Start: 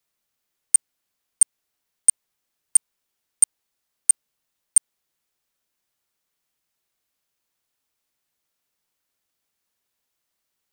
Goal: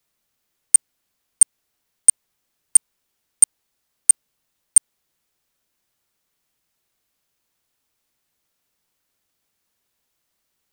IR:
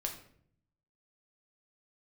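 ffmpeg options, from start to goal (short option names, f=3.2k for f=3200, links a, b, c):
-af "lowshelf=f=340:g=4,volume=4dB"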